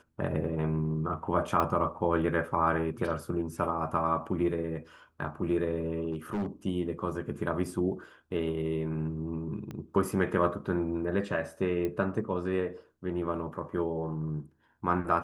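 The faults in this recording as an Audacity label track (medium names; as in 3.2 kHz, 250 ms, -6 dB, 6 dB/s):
1.600000	1.600000	pop -15 dBFS
6.110000	6.460000	clipped -28 dBFS
9.710000	9.710000	pop -27 dBFS
11.850000	11.850000	pop -21 dBFS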